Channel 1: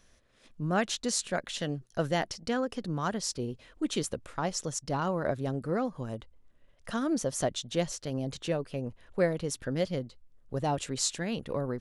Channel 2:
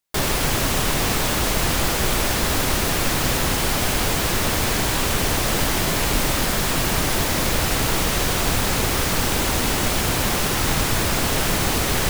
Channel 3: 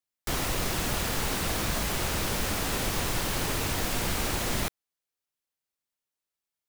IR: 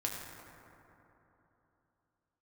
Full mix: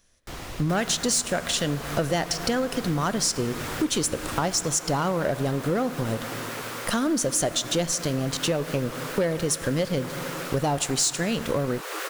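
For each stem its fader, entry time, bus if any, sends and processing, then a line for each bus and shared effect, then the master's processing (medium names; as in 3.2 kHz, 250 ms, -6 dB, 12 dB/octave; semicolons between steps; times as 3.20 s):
+1.0 dB, 0.00 s, send -13.5 dB, treble shelf 5.4 kHz +10 dB; waveshaping leveller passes 3
+2.0 dB, 0.55 s, no send, rippled Chebyshev high-pass 340 Hz, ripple 9 dB; vibrato with a chosen wave square 6.9 Hz, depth 160 cents; auto duck -8 dB, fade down 1.10 s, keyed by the first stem
-10.5 dB, 0.00 s, send -6.5 dB, treble shelf 9.2 kHz -10 dB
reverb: on, RT60 3.3 s, pre-delay 5 ms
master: compression 4:1, threshold -23 dBFS, peak gain reduction 11 dB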